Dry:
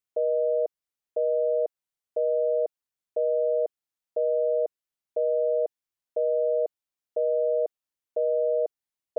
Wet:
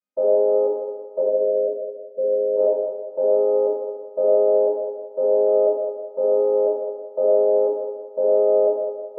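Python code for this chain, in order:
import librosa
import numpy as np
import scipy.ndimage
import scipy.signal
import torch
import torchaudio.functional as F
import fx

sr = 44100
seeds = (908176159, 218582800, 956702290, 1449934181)

y = fx.chord_vocoder(x, sr, chord='major triad', root=56)
y = fx.cheby_ripple(y, sr, hz=720.0, ripple_db=6, at=(1.19, 2.56), fade=0.02)
y = fx.rev_fdn(y, sr, rt60_s=1.5, lf_ratio=0.8, hf_ratio=0.65, size_ms=33.0, drr_db=-8.5)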